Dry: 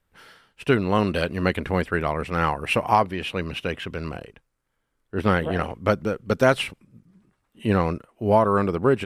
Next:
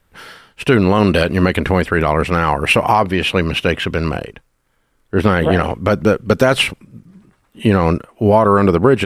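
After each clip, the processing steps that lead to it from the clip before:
boost into a limiter +13.5 dB
level −1 dB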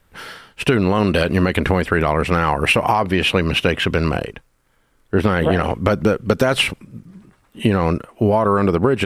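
downward compressor, threshold −14 dBFS, peak gain reduction 7.5 dB
level +2 dB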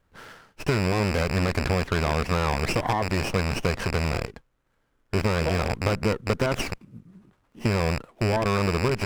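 loose part that buzzes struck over −22 dBFS, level −6 dBFS
windowed peak hold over 9 samples
level −8.5 dB

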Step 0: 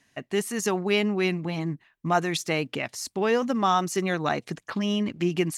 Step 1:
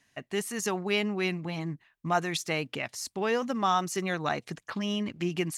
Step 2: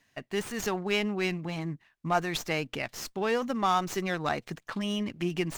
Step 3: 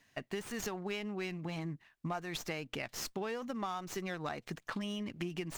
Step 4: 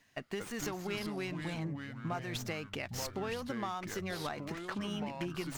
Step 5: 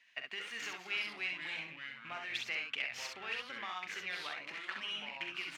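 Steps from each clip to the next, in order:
parametric band 300 Hz −3.5 dB 1.9 octaves; level −2.5 dB
windowed peak hold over 3 samples
downward compressor 10 to 1, threshold −35 dBFS, peak gain reduction 14.5 dB
delay with pitch and tempo change per echo 177 ms, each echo −5 semitones, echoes 2, each echo −6 dB
loose part that buzzes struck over −38 dBFS, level −44 dBFS; resonant band-pass 2,500 Hz, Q 2.2; on a send: ambience of single reflections 43 ms −9.5 dB, 66 ms −4.5 dB; on the sum: level +6.5 dB

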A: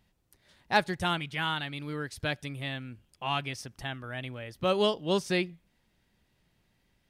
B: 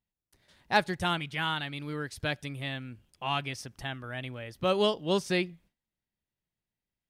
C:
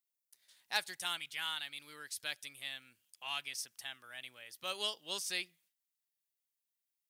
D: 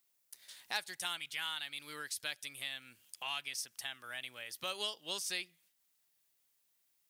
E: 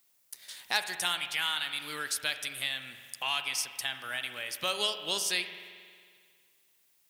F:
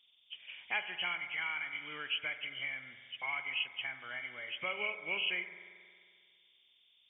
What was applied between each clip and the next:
noise gate with hold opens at −55 dBFS
first difference; level +3.5 dB
downward compressor 2 to 1, threshold −58 dBFS, peak gain reduction 16 dB; level +12 dB
spring reverb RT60 2 s, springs 45 ms, chirp 70 ms, DRR 8.5 dB; level +8 dB
hearing-aid frequency compression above 2,000 Hz 4 to 1; level −7 dB

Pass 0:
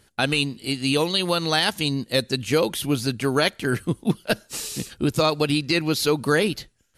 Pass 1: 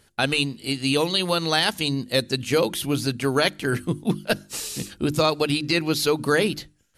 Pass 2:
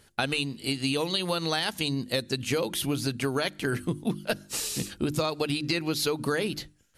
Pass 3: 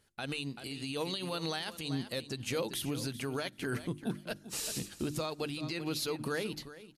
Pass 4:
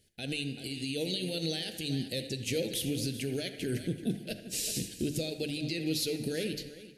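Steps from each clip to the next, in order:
mains-hum notches 50/100/150/200/250/300/350 Hz
downward compressor, threshold −24 dBFS, peak gain reduction 9 dB
repeating echo 386 ms, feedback 16%, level −14 dB; brickwall limiter −21.5 dBFS, peak gain reduction 9.5 dB; expander for the loud parts 1.5 to 1, over −47 dBFS; level −2.5 dB
Butterworth band-reject 1,100 Hz, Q 0.64; delay with a band-pass on its return 78 ms, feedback 53%, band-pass 1,200 Hz, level −9 dB; dense smooth reverb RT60 1.3 s, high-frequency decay 0.9×, DRR 11.5 dB; level +3.5 dB

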